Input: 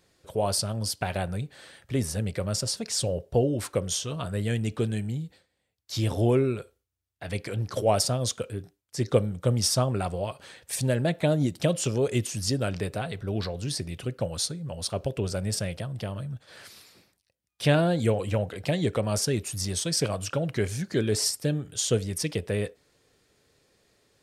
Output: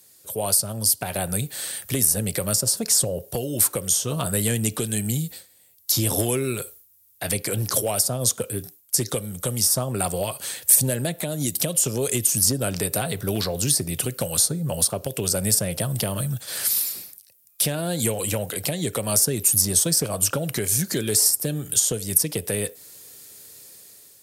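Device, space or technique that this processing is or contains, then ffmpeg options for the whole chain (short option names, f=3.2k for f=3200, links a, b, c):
FM broadcast chain: -filter_complex "[0:a]highpass=78,dynaudnorm=f=430:g=5:m=11.5dB,acrossover=split=92|1400[a][b][c];[a]acompressor=threshold=-42dB:ratio=4[d];[b]acompressor=threshold=-21dB:ratio=4[e];[c]acompressor=threshold=-36dB:ratio=4[f];[d][e][f]amix=inputs=3:normalize=0,aemphasis=mode=production:type=50fm,alimiter=limit=-13.5dB:level=0:latency=1:release=370,asoftclip=type=hard:threshold=-15.5dB,lowpass=f=15k:w=0.5412,lowpass=f=15k:w=1.3066,aemphasis=mode=production:type=50fm"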